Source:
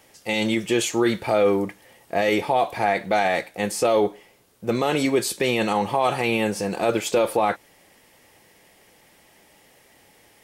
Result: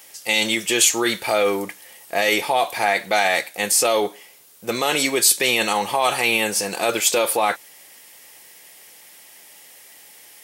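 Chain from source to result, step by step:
spectral tilt +3.5 dB per octave
level +2.5 dB

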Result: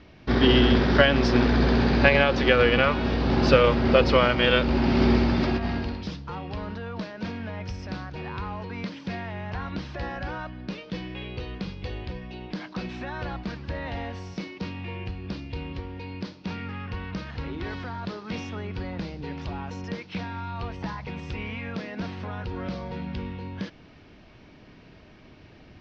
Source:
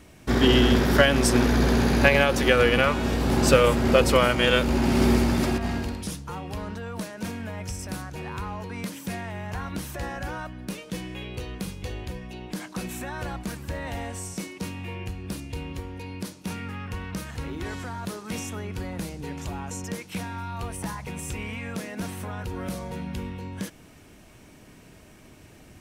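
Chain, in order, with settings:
Butterworth low-pass 5,100 Hz 48 dB per octave

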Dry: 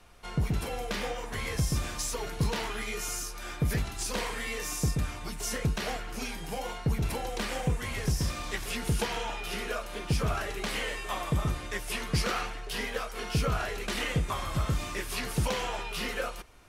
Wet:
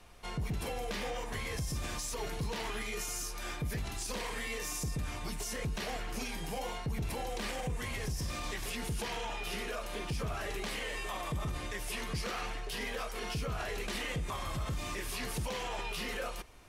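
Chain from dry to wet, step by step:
parametric band 1,400 Hz −5 dB 0.2 octaves
brickwall limiter −28.5 dBFS, peak gain reduction 9.5 dB

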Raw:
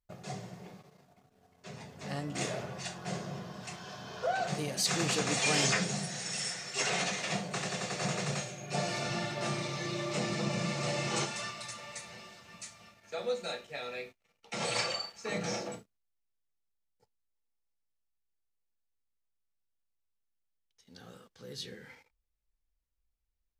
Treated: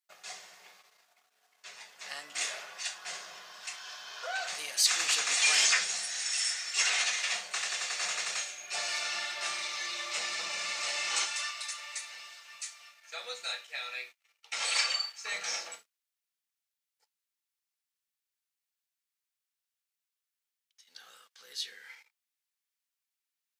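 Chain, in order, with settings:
high-pass filter 1,500 Hz 12 dB per octave
level +5.5 dB

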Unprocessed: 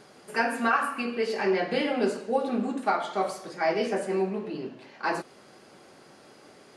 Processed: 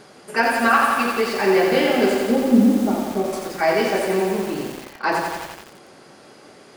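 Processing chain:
0:02.20–0:03.33: drawn EQ curve 130 Hz 0 dB, 230 Hz +9 dB, 1,600 Hz −20 dB
feedback echo at a low word length 87 ms, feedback 80%, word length 7 bits, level −3.5 dB
level +6.5 dB

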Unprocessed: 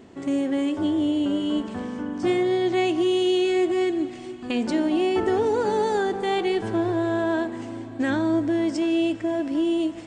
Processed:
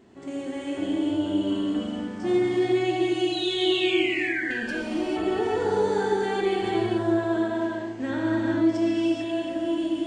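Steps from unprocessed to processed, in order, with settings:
0:03.32–0:04.42: sound drawn into the spectrogram fall 1,500–4,100 Hz −27 dBFS
0:04.45–0:05.09: tube saturation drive 19 dB, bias 0.45
0:07.37–0:08.93: low-pass filter 7,000 Hz 12 dB per octave
reverb whose tail is shaped and stops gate 480 ms flat, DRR −5 dB
level −8 dB

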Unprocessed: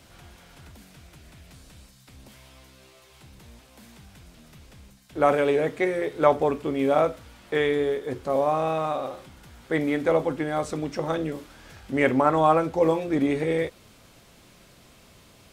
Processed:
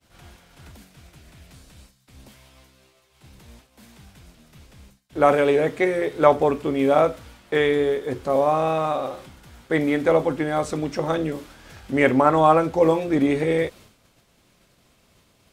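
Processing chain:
downward expander −45 dBFS
level +3.5 dB

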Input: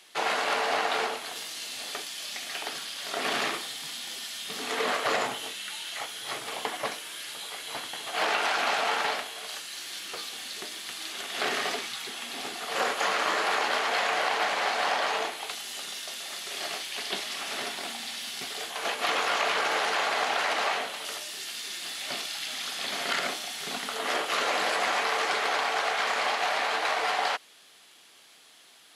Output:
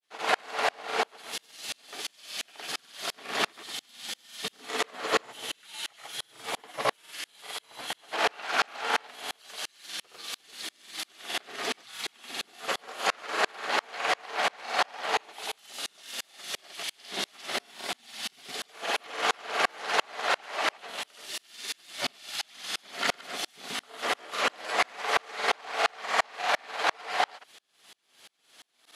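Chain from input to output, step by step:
granular cloud, pitch spread up and down by 0 semitones
tremolo with a ramp in dB swelling 2.9 Hz, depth 36 dB
level +8 dB

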